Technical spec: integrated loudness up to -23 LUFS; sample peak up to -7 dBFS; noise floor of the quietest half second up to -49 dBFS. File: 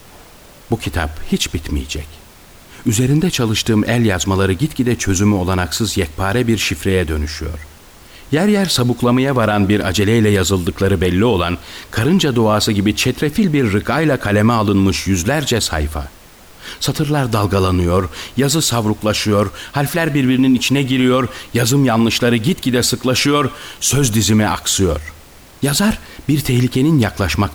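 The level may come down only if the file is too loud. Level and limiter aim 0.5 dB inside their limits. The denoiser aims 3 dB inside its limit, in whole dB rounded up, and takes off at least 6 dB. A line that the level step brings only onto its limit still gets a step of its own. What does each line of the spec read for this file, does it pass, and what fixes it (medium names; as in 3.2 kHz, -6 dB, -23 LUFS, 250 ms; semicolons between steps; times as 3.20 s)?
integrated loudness -16.0 LUFS: fail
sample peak -4.5 dBFS: fail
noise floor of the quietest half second -41 dBFS: fail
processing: noise reduction 6 dB, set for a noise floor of -41 dBFS; trim -7.5 dB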